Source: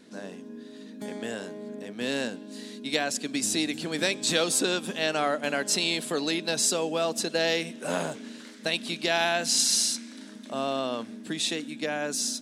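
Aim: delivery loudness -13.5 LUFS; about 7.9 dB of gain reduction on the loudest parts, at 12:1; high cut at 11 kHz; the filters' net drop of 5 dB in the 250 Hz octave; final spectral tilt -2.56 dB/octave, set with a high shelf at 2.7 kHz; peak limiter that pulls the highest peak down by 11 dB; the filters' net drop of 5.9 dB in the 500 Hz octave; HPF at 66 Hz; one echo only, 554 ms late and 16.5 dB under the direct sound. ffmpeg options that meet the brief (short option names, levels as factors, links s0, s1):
-af "highpass=66,lowpass=11000,equalizer=f=250:t=o:g=-4,equalizer=f=500:t=o:g=-6.5,highshelf=f=2700:g=-5,acompressor=threshold=0.0251:ratio=12,alimiter=level_in=2.11:limit=0.0631:level=0:latency=1,volume=0.473,aecho=1:1:554:0.15,volume=23.7"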